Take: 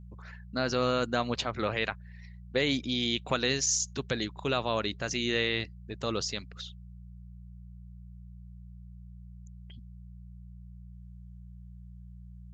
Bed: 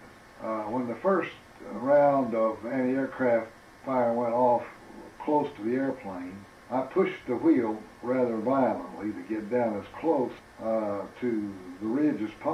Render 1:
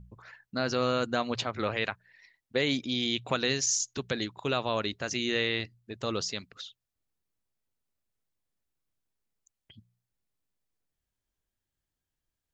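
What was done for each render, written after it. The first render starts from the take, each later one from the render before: de-hum 60 Hz, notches 3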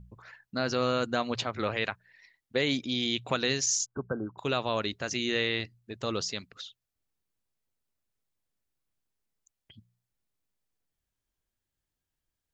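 3.86–4.38 s: brick-wall FIR low-pass 1.6 kHz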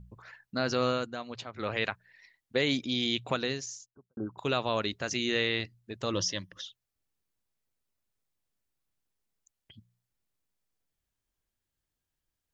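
0.88–1.77 s: dip -9.5 dB, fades 0.24 s; 3.14–4.17 s: studio fade out; 6.13–6.66 s: rippled EQ curve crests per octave 1.2, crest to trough 13 dB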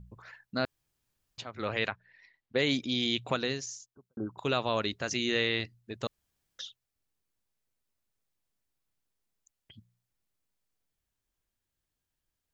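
0.65–1.38 s: room tone; 1.88–2.59 s: distance through air 140 m; 6.07–6.59 s: room tone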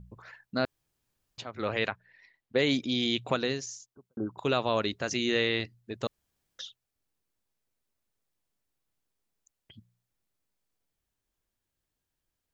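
peaking EQ 410 Hz +3 dB 2.7 oct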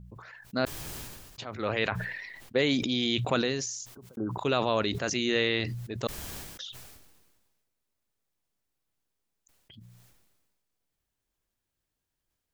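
decay stretcher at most 38 dB/s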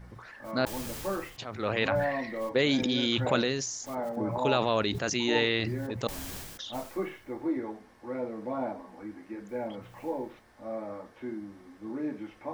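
add bed -8.5 dB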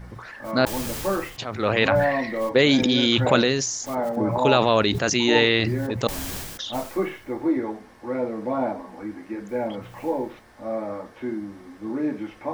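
trim +8 dB

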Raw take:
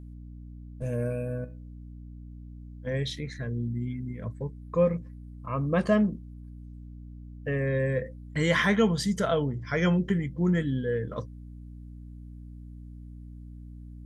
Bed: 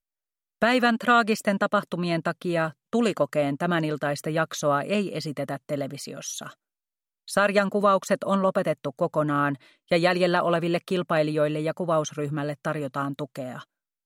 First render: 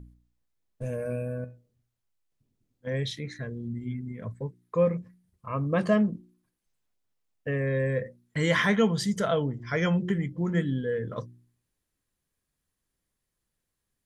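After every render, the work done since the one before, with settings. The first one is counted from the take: de-hum 60 Hz, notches 6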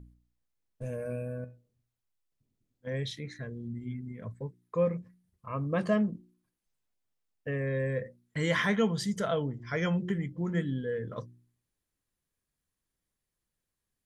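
trim -4 dB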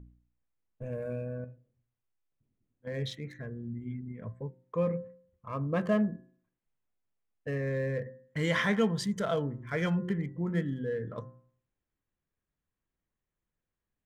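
local Wiener filter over 9 samples; de-hum 130.3 Hz, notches 15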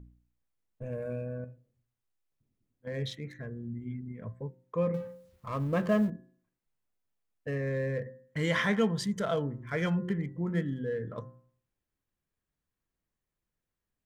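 4.94–6.10 s: companding laws mixed up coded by mu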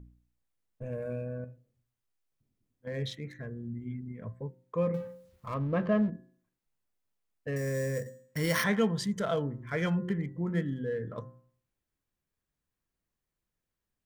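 5.54–6.13 s: distance through air 230 m; 7.56–8.64 s: sample-rate reducer 7.5 kHz

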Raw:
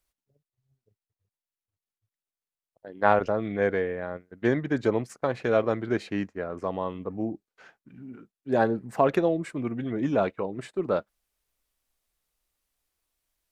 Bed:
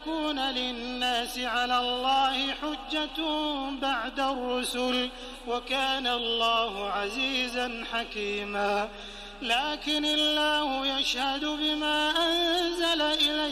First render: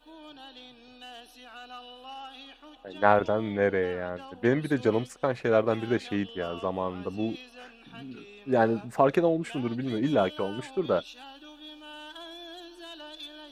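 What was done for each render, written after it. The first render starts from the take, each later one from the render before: add bed -18 dB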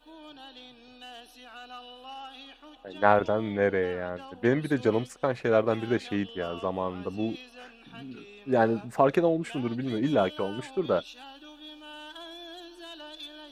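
no audible change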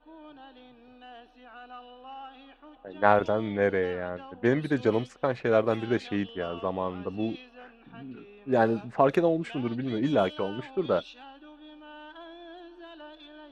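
level-controlled noise filter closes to 1.6 kHz, open at -19 dBFS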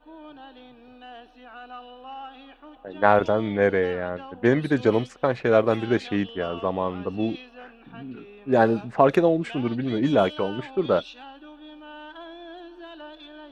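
trim +4.5 dB; peak limiter -3 dBFS, peak gain reduction 2 dB

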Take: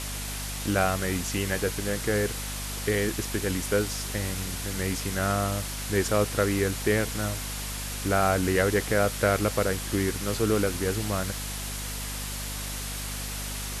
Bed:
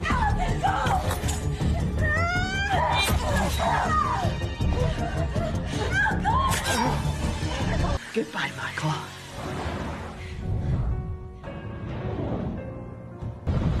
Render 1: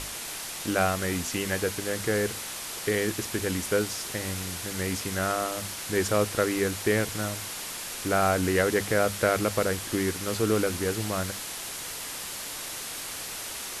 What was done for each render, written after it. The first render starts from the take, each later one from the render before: hum notches 50/100/150/200/250 Hz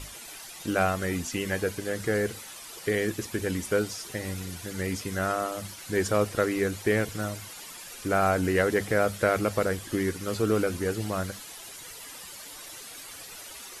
noise reduction 11 dB, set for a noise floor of -37 dBFS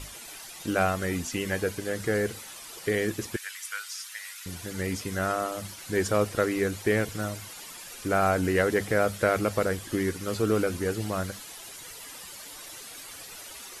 3.36–4.46 s: high-pass 1.3 kHz 24 dB/octave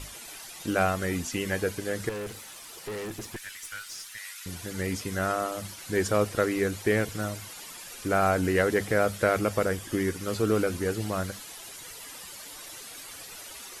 2.09–4.18 s: valve stage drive 32 dB, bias 0.4; 9.39–10.18 s: band-stop 4.1 kHz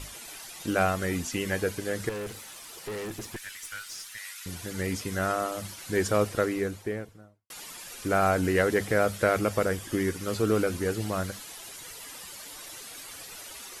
6.20–7.50 s: studio fade out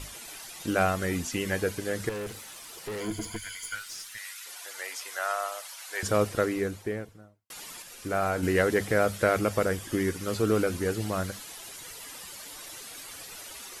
3.00–3.75 s: rippled EQ curve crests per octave 1.8, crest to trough 15 dB; 4.42–6.03 s: high-pass 650 Hz 24 dB/octave; 7.82–8.43 s: feedback comb 53 Hz, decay 0.29 s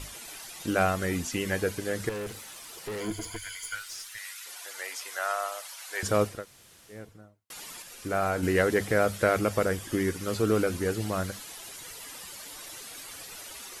3.12–4.28 s: peaking EQ 200 Hz -11 dB; 6.34–7.00 s: room tone, crossfade 0.24 s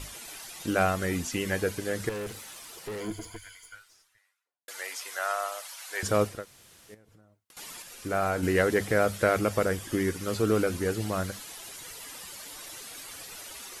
2.50–4.68 s: studio fade out; 6.94–7.57 s: compression 16:1, threshold -53 dBFS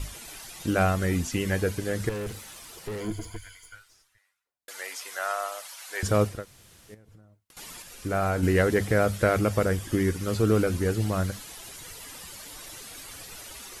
bass shelf 160 Hz +10.5 dB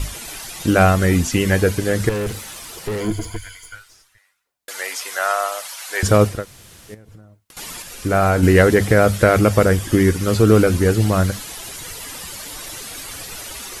trim +10 dB; peak limiter -2 dBFS, peak gain reduction 2 dB

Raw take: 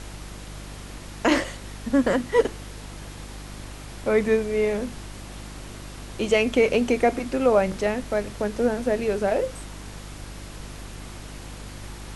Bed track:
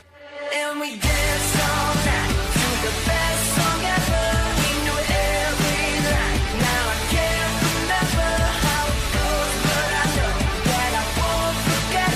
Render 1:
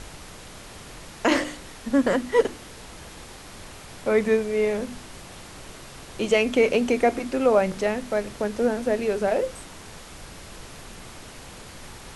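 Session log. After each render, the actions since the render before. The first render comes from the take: de-hum 50 Hz, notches 7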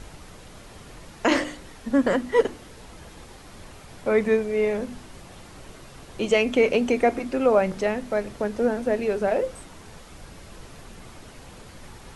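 noise reduction 6 dB, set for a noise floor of -43 dBFS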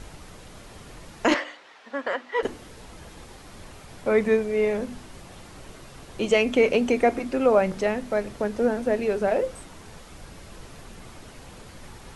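1.34–2.43 s: band-pass 720–3700 Hz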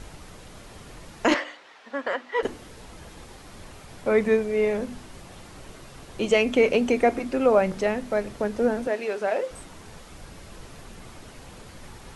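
8.87–9.51 s: frequency weighting A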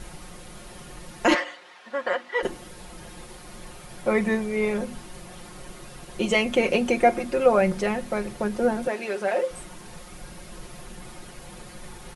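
peaking EQ 9.9 kHz +8.5 dB 0.21 oct; comb 5.6 ms, depth 68%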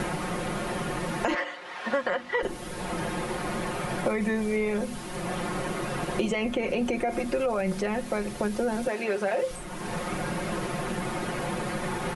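peak limiter -18 dBFS, peak gain reduction 11.5 dB; three bands compressed up and down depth 100%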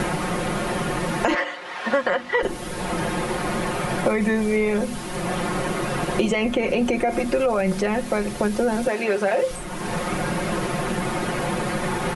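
trim +6 dB

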